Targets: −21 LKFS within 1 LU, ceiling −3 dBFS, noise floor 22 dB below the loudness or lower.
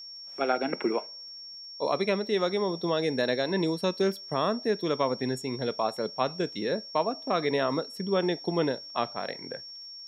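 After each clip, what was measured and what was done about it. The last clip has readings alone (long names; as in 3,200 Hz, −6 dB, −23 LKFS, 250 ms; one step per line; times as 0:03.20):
crackle rate 29 per second; interfering tone 5,500 Hz; level of the tone −41 dBFS; integrated loudness −29.0 LKFS; sample peak −13.0 dBFS; target loudness −21.0 LKFS
→ click removal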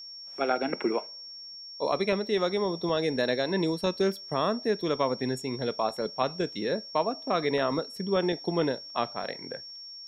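crackle rate 0 per second; interfering tone 5,500 Hz; level of the tone −41 dBFS
→ notch filter 5,500 Hz, Q 30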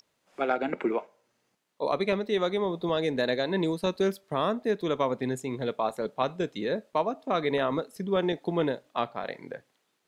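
interfering tone none found; integrated loudness −29.5 LKFS; sample peak −13.5 dBFS; target loudness −21.0 LKFS
→ level +8.5 dB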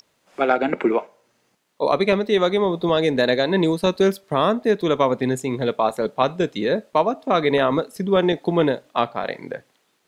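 integrated loudness −21.0 LKFS; sample peak −5.0 dBFS; background noise floor −67 dBFS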